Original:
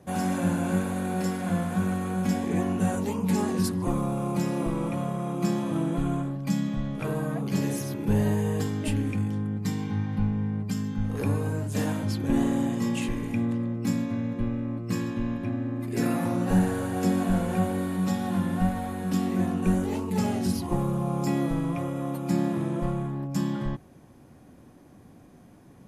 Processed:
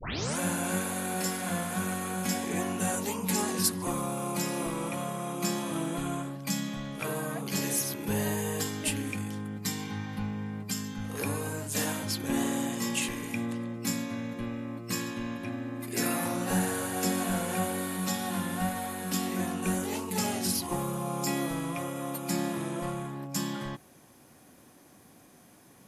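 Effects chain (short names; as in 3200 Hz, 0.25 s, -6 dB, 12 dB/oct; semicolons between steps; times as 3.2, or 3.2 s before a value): tape start at the beginning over 0.39 s; tilt +3 dB/oct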